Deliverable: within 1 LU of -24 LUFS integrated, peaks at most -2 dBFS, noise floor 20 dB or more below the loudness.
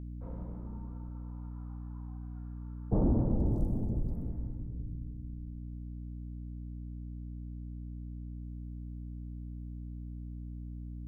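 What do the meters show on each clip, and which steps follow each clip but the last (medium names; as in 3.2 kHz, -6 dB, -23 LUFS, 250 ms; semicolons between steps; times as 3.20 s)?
hum 60 Hz; highest harmonic 300 Hz; hum level -39 dBFS; loudness -39.0 LUFS; peak level -17.5 dBFS; loudness target -24.0 LUFS
-> de-hum 60 Hz, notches 5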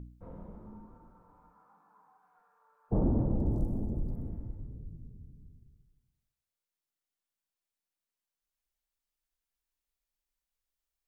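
hum not found; loudness -34.0 LUFS; peak level -18.0 dBFS; loudness target -24.0 LUFS
-> trim +10 dB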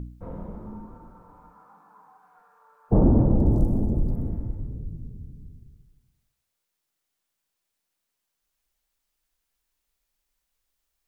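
loudness -24.0 LUFS; peak level -8.0 dBFS; noise floor -81 dBFS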